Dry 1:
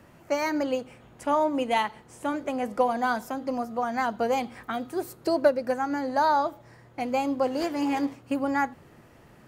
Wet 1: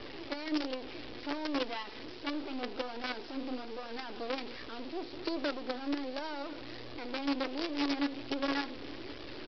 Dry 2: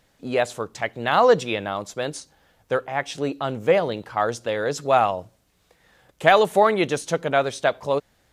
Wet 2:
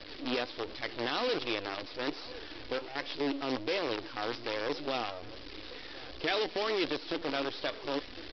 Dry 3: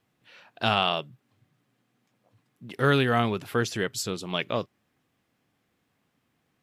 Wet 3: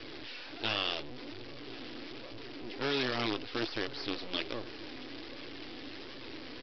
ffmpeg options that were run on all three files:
-filter_complex "[0:a]aeval=exprs='val(0)+0.5*0.0562*sgn(val(0))':c=same,equalizer=f=890:w=0.56:g=-14,aresample=11025,acrusher=bits=5:dc=4:mix=0:aa=0.000001,aresample=44100,lowshelf=f=240:t=q:w=3:g=-7.5,flanger=delay=1.7:depth=2.4:regen=67:speed=1.3:shape=sinusoidal,aecho=1:1:1056:0.075,acrossover=split=2200[a][b];[a]alimiter=level_in=1dB:limit=-24dB:level=0:latency=1:release=44,volume=-1dB[c];[c][b]amix=inputs=2:normalize=0"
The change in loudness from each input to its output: -10.0, -12.5, -11.0 LU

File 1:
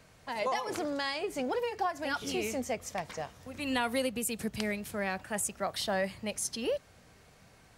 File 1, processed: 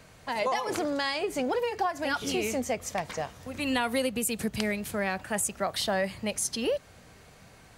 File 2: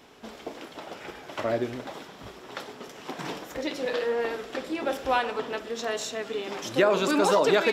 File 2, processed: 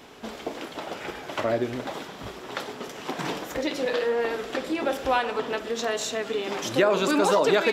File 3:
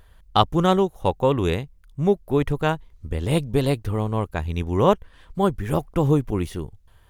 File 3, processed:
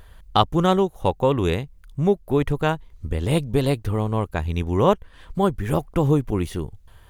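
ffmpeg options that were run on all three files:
-filter_complex "[0:a]asplit=2[a][b];[b]acompressor=threshold=-32dB:ratio=6,volume=2dB[c];[a][c]amix=inputs=2:normalize=0,bandreject=f=5.4k:w=29,volume=-1.5dB"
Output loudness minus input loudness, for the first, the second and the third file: +4.0, +0.5, +0.5 LU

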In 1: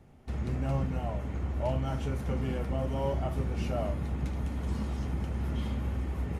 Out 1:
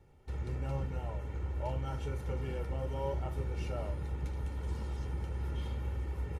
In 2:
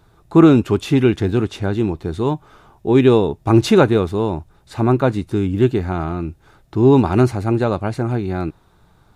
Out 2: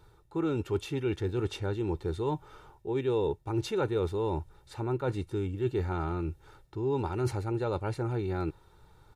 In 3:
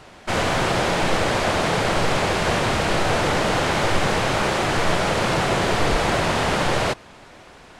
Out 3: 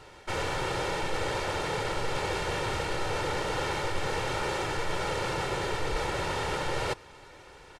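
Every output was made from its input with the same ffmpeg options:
-af "areverse,acompressor=threshold=-22dB:ratio=6,areverse,aecho=1:1:2.2:0.59,volume=-6.5dB"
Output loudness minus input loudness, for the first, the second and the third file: -5.0, -15.5, -10.5 LU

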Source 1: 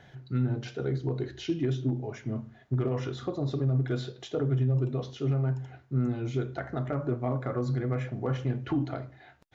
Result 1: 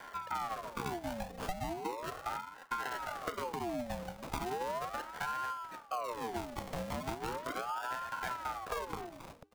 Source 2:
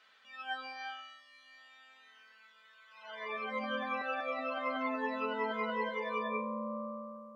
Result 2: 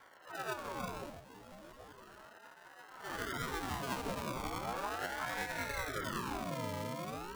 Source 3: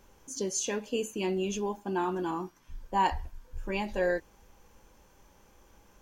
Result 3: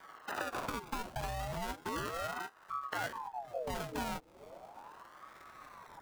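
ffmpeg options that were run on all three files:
-af "acompressor=threshold=-41dB:ratio=8,aresample=22050,aresample=44100,bandreject=f=394.2:t=h:w=4,bandreject=f=788.4:t=h:w=4,bandreject=f=1.1826k:t=h:w=4,acrusher=samples=32:mix=1:aa=0.000001:lfo=1:lforange=19.2:lforate=0.48,afreqshift=42,aeval=exprs='val(0)*sin(2*PI*790*n/s+790*0.55/0.37*sin(2*PI*0.37*n/s))':c=same,volume=8dB"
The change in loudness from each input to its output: -8.0, -3.0, -7.5 LU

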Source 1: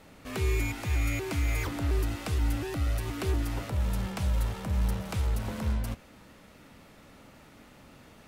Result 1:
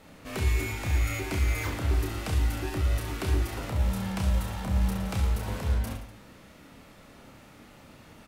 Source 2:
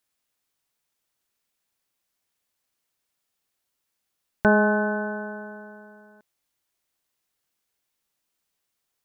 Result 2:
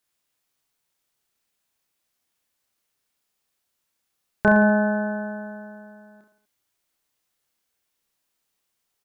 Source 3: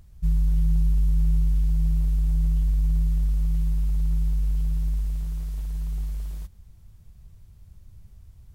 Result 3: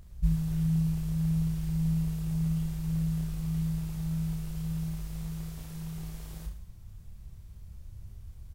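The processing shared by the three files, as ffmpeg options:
-af "aecho=1:1:30|67.5|114.4|173|246.2:0.631|0.398|0.251|0.158|0.1"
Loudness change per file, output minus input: +1.5, +2.0, -6.5 LU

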